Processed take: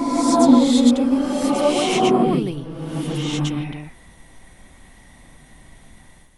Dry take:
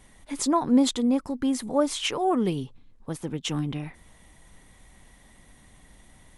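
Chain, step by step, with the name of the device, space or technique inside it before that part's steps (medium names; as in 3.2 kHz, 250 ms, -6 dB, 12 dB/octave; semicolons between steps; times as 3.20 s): reverse reverb (reverse; reverberation RT60 2.0 s, pre-delay 96 ms, DRR -8 dB; reverse); trim -1 dB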